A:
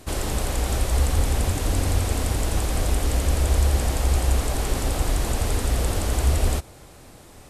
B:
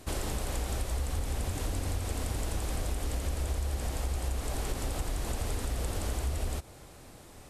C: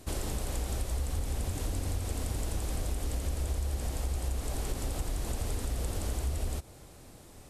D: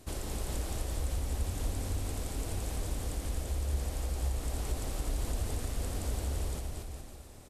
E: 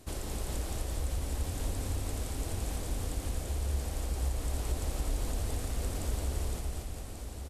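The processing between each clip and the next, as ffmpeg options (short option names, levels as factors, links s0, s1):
-af "acompressor=threshold=0.0631:ratio=6,volume=0.596"
-af "equalizer=f=1500:w=0.43:g=-4"
-af "aecho=1:1:230|414|561.2|679|773.2:0.631|0.398|0.251|0.158|0.1,volume=0.668"
-af "aecho=1:1:1138:0.398"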